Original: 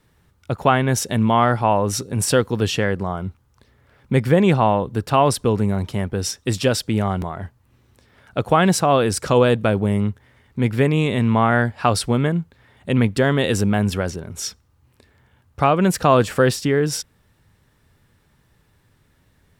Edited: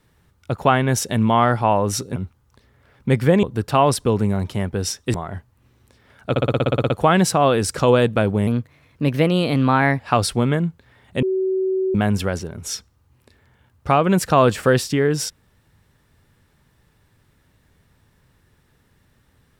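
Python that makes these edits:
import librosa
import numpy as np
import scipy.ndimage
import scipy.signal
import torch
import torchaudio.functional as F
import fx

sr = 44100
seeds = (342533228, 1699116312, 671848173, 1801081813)

y = fx.edit(x, sr, fx.cut(start_s=2.16, length_s=1.04),
    fx.cut(start_s=4.47, length_s=0.35),
    fx.cut(start_s=6.53, length_s=0.69),
    fx.stutter(start_s=8.38, slice_s=0.06, count=11),
    fx.speed_span(start_s=9.95, length_s=1.77, speed=1.16),
    fx.bleep(start_s=12.95, length_s=0.72, hz=378.0, db=-17.5), tone=tone)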